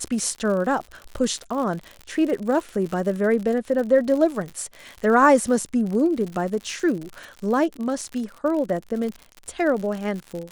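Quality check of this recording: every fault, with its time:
crackle 83/s -29 dBFS

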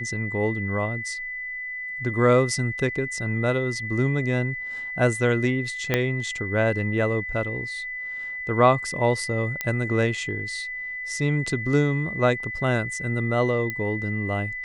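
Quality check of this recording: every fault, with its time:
tone 2000 Hz -30 dBFS
5.94 pop -7 dBFS
9.61 pop -10 dBFS
13.7 pop -15 dBFS

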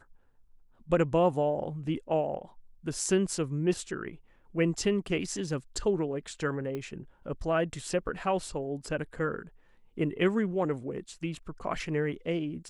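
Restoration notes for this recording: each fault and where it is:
6.75 pop -24 dBFS

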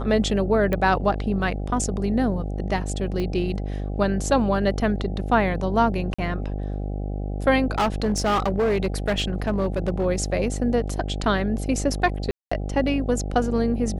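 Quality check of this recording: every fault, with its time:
buzz 50 Hz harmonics 16 -28 dBFS
0.73 pop -13 dBFS
3.2 pop -17 dBFS
6.14–6.18 gap 45 ms
7.78–10.06 clipped -17.5 dBFS
12.31–12.52 gap 0.205 s

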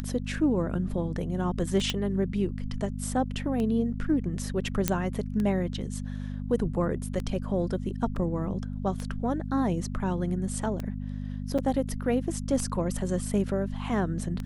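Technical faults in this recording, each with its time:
hum 50 Hz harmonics 5 -34 dBFS
tick 33 1/3 rpm -20 dBFS
1.9 pop -13 dBFS
4.88 pop -7 dBFS
8.16 gap 2 ms
11.58–11.59 gap 5.8 ms

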